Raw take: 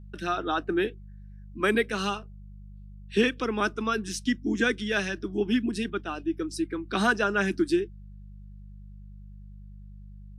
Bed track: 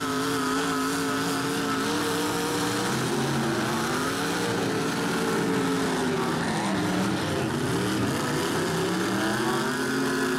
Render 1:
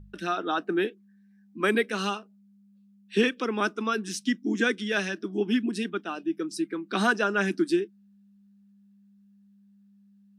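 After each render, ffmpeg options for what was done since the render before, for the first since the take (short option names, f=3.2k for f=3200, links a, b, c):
-af "bandreject=f=50:t=h:w=4,bandreject=f=100:t=h:w=4,bandreject=f=150:t=h:w=4"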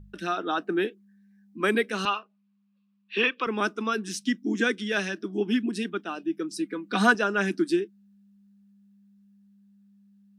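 -filter_complex "[0:a]asettb=1/sr,asplit=3[a][b][c];[a]atrim=end=2.054[d];[b]atrim=start=2.05:end=3.47,asetpts=PTS-STARTPTS,afade=t=in:d=0.004:c=qsin,afade=t=out:st=1.416:d=0.004:c=qsin,highpass=370,equalizer=f=430:t=q:w=4:g=-3,equalizer=f=1.1k:t=q:w=4:g=10,equalizer=f=2.6k:t=q:w=4:g=7,lowpass=f=4.5k:w=0.5412,lowpass=f=4.5k:w=1.3066[e];[c]atrim=start=3.466[f];[d][e]acrossfade=d=0.004:c1=hsin:c2=qsin[g];[g][f]acrossfade=d=0.004:c1=qsin:c2=hsin,asettb=1/sr,asplit=3[h][i][j];[h]atrim=end=6.594[k];[i]atrim=start=6.59:end=7.15,asetpts=PTS-STARTPTS,afade=t=in:d=0.004:c=qsin,afade=t=out:st=0.556:d=0.004:c=qsin,aecho=1:1:4.1:0.65,atrim=end_sample=24696[l];[j]atrim=start=7.146[m];[k][l]acrossfade=d=0.004:c1=hsin:c2=qsin[n];[n][m]acrossfade=d=0.004:c1=qsin:c2=hsin"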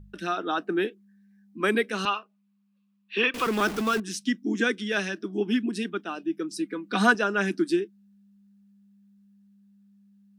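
-filter_complex "[0:a]asettb=1/sr,asplit=3[a][b][c];[a]atrim=end=3.344[d];[b]atrim=start=3.34:end=4,asetpts=PTS-STARTPTS,afade=t=in:d=0.004:c=qsin,afade=t=out:st=0.656:d=0.004:c=qsin,aeval=exprs='val(0)+0.5*0.0355*sgn(val(0))':c=same[e];[c]atrim=start=3.996[f];[d][e]acrossfade=d=0.004:c1=hsin:c2=qsin[g];[g][f]acrossfade=d=0.004:c1=qsin:c2=hsin"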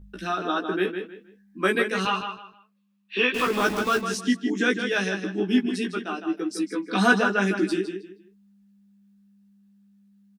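-filter_complex "[0:a]asplit=2[a][b];[b]adelay=16,volume=-2.5dB[c];[a][c]amix=inputs=2:normalize=0,asplit=2[d][e];[e]adelay=157,lowpass=f=4.4k:p=1,volume=-7dB,asplit=2[f][g];[g]adelay=157,lowpass=f=4.4k:p=1,volume=0.27,asplit=2[h][i];[i]adelay=157,lowpass=f=4.4k:p=1,volume=0.27[j];[d][f][h][j]amix=inputs=4:normalize=0"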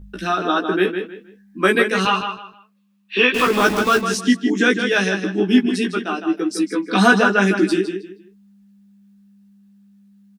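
-af "volume=7dB,alimiter=limit=-2dB:level=0:latency=1"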